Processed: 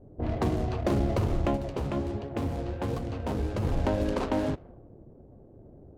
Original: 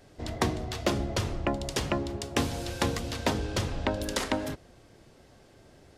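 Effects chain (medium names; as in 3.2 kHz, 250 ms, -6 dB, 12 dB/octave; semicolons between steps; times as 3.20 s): median filter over 25 samples; level-controlled noise filter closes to 430 Hz, open at -27.5 dBFS; peak limiter -24 dBFS, peak gain reduction 8.5 dB; 1.57–3.65 s: flange 1.4 Hz, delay 6.7 ms, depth 8.9 ms, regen +54%; trim +6.5 dB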